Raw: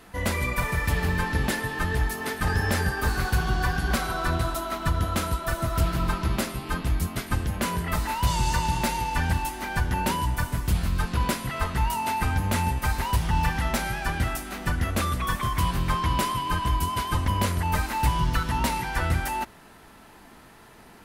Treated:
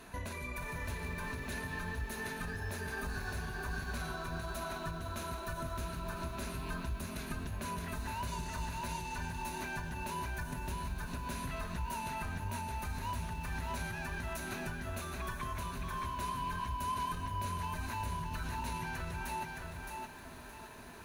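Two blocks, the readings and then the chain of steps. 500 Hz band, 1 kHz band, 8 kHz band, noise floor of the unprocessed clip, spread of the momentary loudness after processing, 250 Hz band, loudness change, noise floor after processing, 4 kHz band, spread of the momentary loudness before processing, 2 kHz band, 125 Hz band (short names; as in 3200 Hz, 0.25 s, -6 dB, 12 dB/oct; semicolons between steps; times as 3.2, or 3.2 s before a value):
-11.5 dB, -11.5 dB, -12.5 dB, -50 dBFS, 3 LU, -13.0 dB, -13.0 dB, -49 dBFS, -13.5 dB, 4 LU, -11.5 dB, -14.5 dB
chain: limiter -21 dBFS, peak gain reduction 7 dB; compressor 6:1, threshold -36 dBFS, peak gain reduction 11.5 dB; ripple EQ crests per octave 1.5, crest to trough 7 dB; lo-fi delay 0.618 s, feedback 35%, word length 10-bit, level -3 dB; gain -3 dB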